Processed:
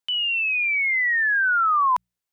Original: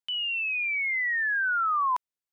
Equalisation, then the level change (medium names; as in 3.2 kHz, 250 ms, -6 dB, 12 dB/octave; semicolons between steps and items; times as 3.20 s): hum notches 60/120/180 Hz; +6.0 dB